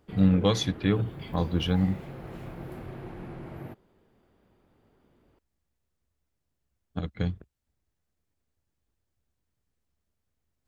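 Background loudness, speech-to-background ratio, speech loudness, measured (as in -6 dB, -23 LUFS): -42.0 LUFS, 14.5 dB, -27.5 LUFS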